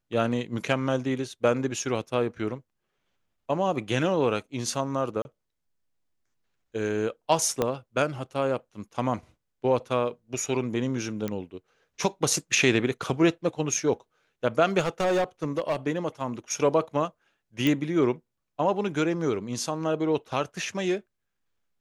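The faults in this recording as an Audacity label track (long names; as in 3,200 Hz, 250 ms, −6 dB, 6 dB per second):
5.220000	5.250000	drop-out 31 ms
7.620000	7.620000	click −11 dBFS
11.280000	11.280000	click −17 dBFS
14.790000	15.760000	clipping −20.5 dBFS
17.670000	17.670000	click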